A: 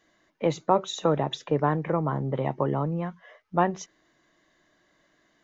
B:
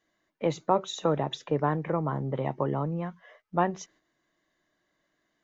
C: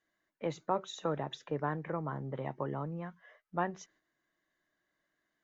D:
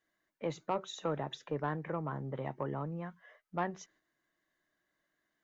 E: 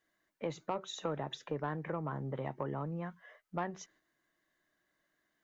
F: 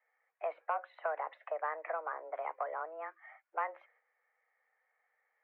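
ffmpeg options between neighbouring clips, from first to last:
-af "agate=range=-7dB:threshold=-56dB:ratio=16:detection=peak,volume=-2.5dB"
-af "equalizer=f=1.6k:t=o:w=0.64:g=5.5,volume=-8.5dB"
-af "asoftclip=type=tanh:threshold=-22dB"
-af "acompressor=threshold=-37dB:ratio=2,volume=2dB"
-af "highpass=f=380:t=q:w=0.5412,highpass=f=380:t=q:w=1.307,lowpass=f=2.2k:t=q:w=0.5176,lowpass=f=2.2k:t=q:w=0.7071,lowpass=f=2.2k:t=q:w=1.932,afreqshift=160,volume=2.5dB"

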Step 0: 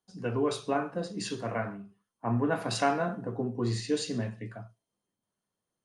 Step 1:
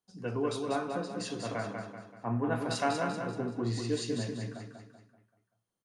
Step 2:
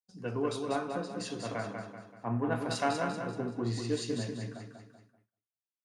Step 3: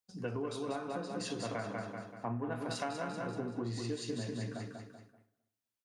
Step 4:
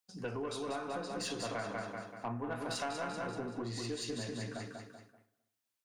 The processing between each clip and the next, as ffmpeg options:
-af "aecho=1:1:192|384|576|768|960:0.562|0.247|0.109|0.0479|0.0211,volume=-3.5dB"
-af "agate=range=-33dB:threshold=-59dB:ratio=3:detection=peak,aeval=exprs='0.158*(cos(1*acos(clip(val(0)/0.158,-1,1)))-cos(1*PI/2))+0.00316*(cos(7*acos(clip(val(0)/0.158,-1,1)))-cos(7*PI/2))':c=same"
-filter_complex "[0:a]acompressor=threshold=-38dB:ratio=6,asplit=2[a][b];[b]adelay=258,lowpass=f=1.5k:p=1,volume=-20dB,asplit=2[c][d];[d]adelay=258,lowpass=f=1.5k:p=1,volume=0.15[e];[a][c][e]amix=inputs=3:normalize=0,volume=3.5dB"
-af "lowshelf=f=430:g=-7,aeval=exprs='(tanh(44.7*val(0)+0.15)-tanh(0.15))/44.7':c=same,volume=4dB"

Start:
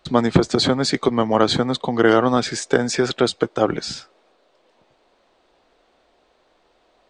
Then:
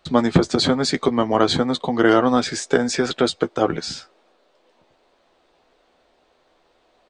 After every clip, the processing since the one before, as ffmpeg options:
-filter_complex "[0:a]asplit=2[a][b];[b]adelay=12,volume=-8.5dB[c];[a][c]amix=inputs=2:normalize=0,volume=-1dB"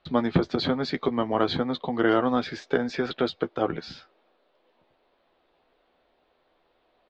-af "lowpass=f=4.1k:w=0.5412,lowpass=f=4.1k:w=1.3066,volume=-6.5dB"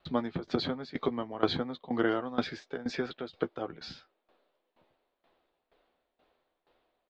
-af "aeval=exprs='val(0)*pow(10,-18*if(lt(mod(2.1*n/s,1),2*abs(2.1)/1000),1-mod(2.1*n/s,1)/(2*abs(2.1)/1000),(mod(2.1*n/s,1)-2*abs(2.1)/1000)/(1-2*abs(2.1)/1000))/20)':c=same"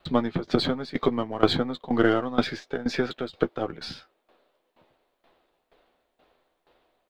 -af "aeval=exprs='if(lt(val(0),0),0.708*val(0),val(0))':c=same,volume=8.5dB"

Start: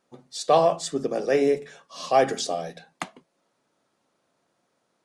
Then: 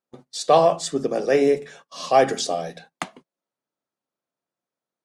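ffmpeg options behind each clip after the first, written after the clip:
-af "agate=range=-21dB:threshold=-49dB:ratio=16:detection=peak,volume=3dB"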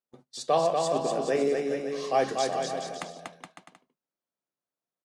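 -af "aecho=1:1:240|420|555|656.2|732.2:0.631|0.398|0.251|0.158|0.1,volume=-8.5dB"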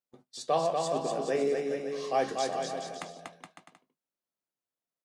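-filter_complex "[0:a]asplit=2[a][b];[b]adelay=19,volume=-13.5dB[c];[a][c]amix=inputs=2:normalize=0,volume=-3.5dB"

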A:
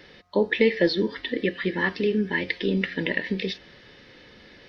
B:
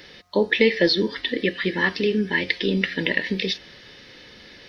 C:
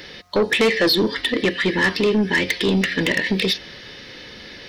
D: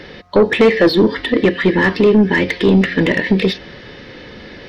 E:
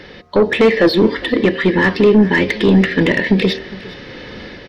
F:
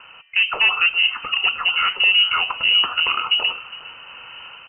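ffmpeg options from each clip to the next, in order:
-af "highshelf=f=3.5k:g=11,volume=1.5dB"
-af "asoftclip=type=tanh:threshold=-19.5dB,volume=7dB"
-af "lowpass=f=1.1k:p=1,volume=8dB"
-af "bandreject=f=77.25:t=h:w=4,bandreject=f=154.5:t=h:w=4,bandreject=f=231.75:t=h:w=4,bandreject=f=309:t=h:w=4,bandreject=f=386.25:t=h:w=4,bandreject=f=463.5:t=h:w=4,bandreject=f=540.75:t=h:w=4,bandreject=f=618:t=h:w=4,bandreject=f=695.25:t=h:w=4,bandreject=f=772.5:t=h:w=4,dynaudnorm=f=340:g=3:m=6dB,aecho=1:1:408:0.106,volume=-1.5dB"
-af "lowpass=f=2.6k:t=q:w=0.5098,lowpass=f=2.6k:t=q:w=0.6013,lowpass=f=2.6k:t=q:w=0.9,lowpass=f=2.6k:t=q:w=2.563,afreqshift=-3100,volume=-6dB"

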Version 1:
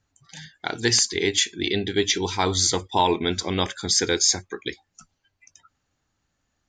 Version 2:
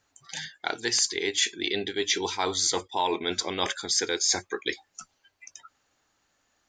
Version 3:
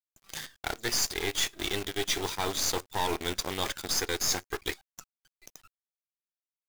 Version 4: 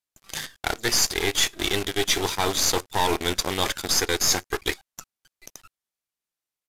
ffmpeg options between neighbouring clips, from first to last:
-af "areverse,acompressor=threshold=-30dB:ratio=4,areverse,bass=f=250:g=-14,treble=f=4k:g=0,volume=6dB"
-af "aeval=exprs='0.299*(cos(1*acos(clip(val(0)/0.299,-1,1)))-cos(1*PI/2))+0.0376*(cos(8*acos(clip(val(0)/0.299,-1,1)))-cos(8*PI/2))':c=same,acrusher=bits=6:dc=4:mix=0:aa=0.000001,volume=-4.5dB"
-af "aresample=32000,aresample=44100,volume=7dB"

